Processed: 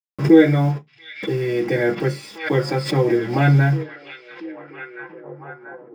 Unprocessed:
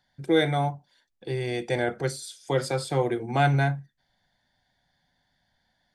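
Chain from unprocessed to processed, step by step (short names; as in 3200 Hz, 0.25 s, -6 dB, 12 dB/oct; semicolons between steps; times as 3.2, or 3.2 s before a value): dynamic EQ 500 Hz, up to -4 dB, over -34 dBFS, Q 0.8; bit-crush 7-bit; delay with a stepping band-pass 0.685 s, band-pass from 3100 Hz, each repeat -0.7 oct, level -6.5 dB; reverb RT60 0.15 s, pre-delay 3 ms, DRR -10 dB; backwards sustainer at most 130 dB/s; gain -4.5 dB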